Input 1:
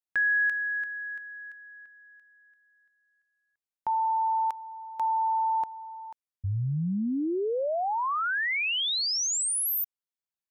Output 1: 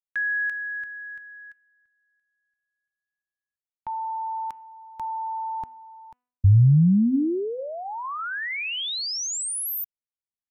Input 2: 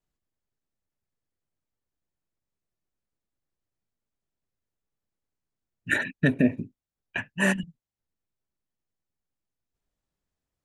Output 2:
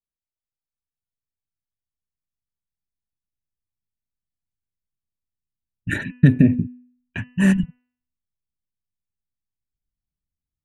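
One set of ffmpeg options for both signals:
-af "agate=range=0.158:threshold=0.00447:ratio=16:release=36:detection=peak,asubboost=boost=7.5:cutoff=220,bandreject=f=247.7:t=h:w=4,bandreject=f=495.4:t=h:w=4,bandreject=f=743.1:t=h:w=4,bandreject=f=990.8:t=h:w=4,bandreject=f=1238.5:t=h:w=4,bandreject=f=1486.2:t=h:w=4,bandreject=f=1733.9:t=h:w=4,bandreject=f=1981.6:t=h:w=4,bandreject=f=2229.3:t=h:w=4,bandreject=f=2477:t=h:w=4,bandreject=f=2724.7:t=h:w=4,bandreject=f=2972.4:t=h:w=4,volume=0.891"

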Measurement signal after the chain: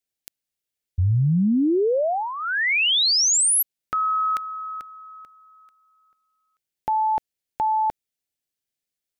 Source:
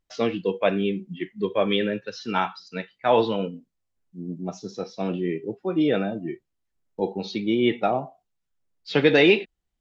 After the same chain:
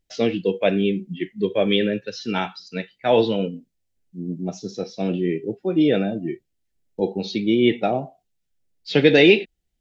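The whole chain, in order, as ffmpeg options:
-af "equalizer=f=1100:w=1.7:g=-12.5,volume=1.68"

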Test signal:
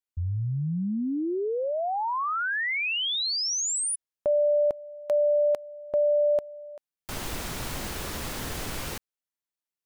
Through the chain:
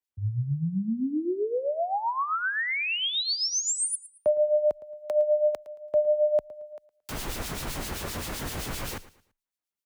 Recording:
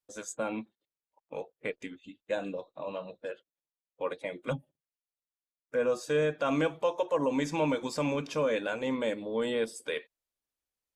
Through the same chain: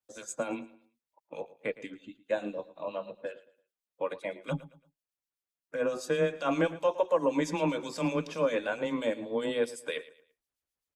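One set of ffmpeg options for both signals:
-filter_complex "[0:a]acrossover=split=2300[s0][s1];[s0]aeval=exprs='val(0)*(1-0.7/2+0.7/2*cos(2*PI*7.7*n/s))':c=same[s2];[s1]aeval=exprs='val(0)*(1-0.7/2-0.7/2*cos(2*PI*7.7*n/s))':c=same[s3];[s2][s3]amix=inputs=2:normalize=0,afreqshift=13,aecho=1:1:112|224|336:0.133|0.0427|0.0137,volume=1.41"

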